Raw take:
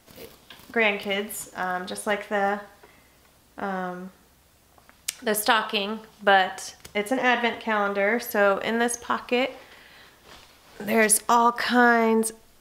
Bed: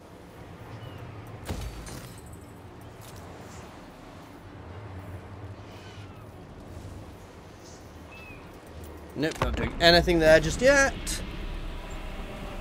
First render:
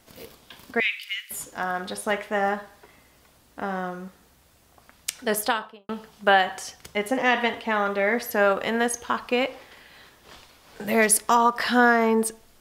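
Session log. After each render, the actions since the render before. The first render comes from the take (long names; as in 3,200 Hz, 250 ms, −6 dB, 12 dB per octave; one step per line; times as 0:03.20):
0:00.80–0:01.31: inverse Chebyshev high-pass filter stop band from 750 Hz, stop band 50 dB
0:05.32–0:05.89: fade out and dull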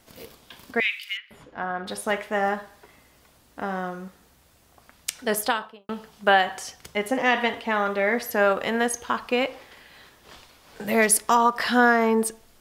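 0:01.17–0:01.87: high-frequency loss of the air 350 metres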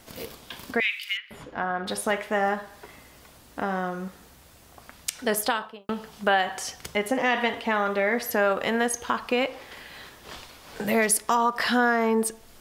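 in parallel at 0 dB: brickwall limiter −13 dBFS, peak gain reduction 8 dB
on the sum: downward compressor 1.5 to 1, threshold −32 dBFS, peak gain reduction 8 dB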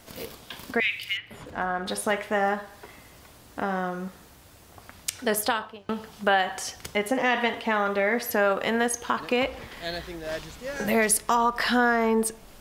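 mix in bed −15.5 dB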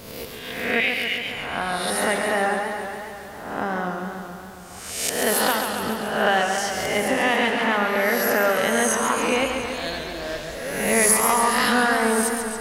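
peak hold with a rise ahead of every peak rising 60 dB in 0.93 s
feedback echo with a swinging delay time 139 ms, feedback 72%, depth 106 cents, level −6 dB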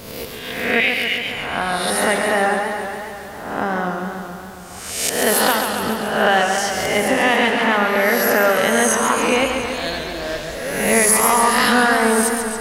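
level +4.5 dB
brickwall limiter −3 dBFS, peak gain reduction 3 dB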